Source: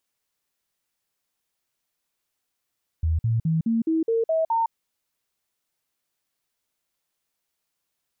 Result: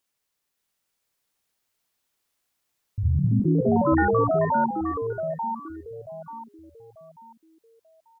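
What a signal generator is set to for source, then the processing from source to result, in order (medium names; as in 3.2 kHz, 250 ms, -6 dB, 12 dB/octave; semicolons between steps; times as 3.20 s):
stepped sine 80.6 Hz up, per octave 2, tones 8, 0.16 s, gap 0.05 s -19 dBFS
on a send: feedback delay 889 ms, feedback 32%, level -6 dB; on the sum: ever faster or slower copies 573 ms, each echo +4 st, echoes 3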